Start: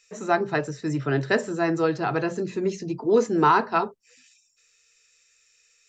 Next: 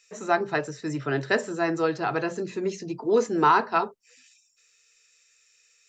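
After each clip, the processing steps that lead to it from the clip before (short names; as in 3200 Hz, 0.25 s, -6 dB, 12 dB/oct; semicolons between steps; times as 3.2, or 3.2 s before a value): low shelf 270 Hz -7 dB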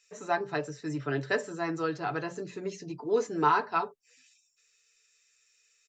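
comb 6.9 ms, depth 48%; gain -6.5 dB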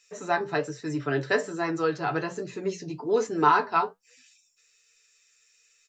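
flange 1.2 Hz, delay 7.7 ms, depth 5.7 ms, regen +60%; gain +8.5 dB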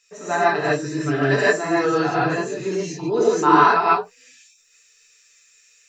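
non-linear reverb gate 0.18 s rising, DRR -7.5 dB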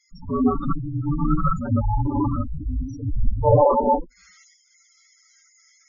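block floating point 7-bit; frequency shift -440 Hz; spectral gate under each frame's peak -10 dB strong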